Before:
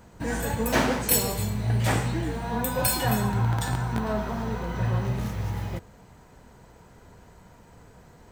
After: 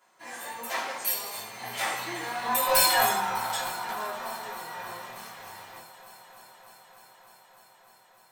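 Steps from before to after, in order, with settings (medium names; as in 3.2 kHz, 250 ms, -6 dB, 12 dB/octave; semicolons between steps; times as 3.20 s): Doppler pass-by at 2.84 s, 13 m/s, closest 4.5 m; high-pass 830 Hz 12 dB/octave; in parallel at 0 dB: compression, threshold -47 dBFS, peak gain reduction 23.5 dB; on the sum: saturation -20 dBFS, distortion -15 dB; on a send: multi-head delay 301 ms, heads second and third, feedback 67%, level -20 dB; on the sum: simulated room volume 130 m³, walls furnished, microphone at 3.1 m; trim +1 dB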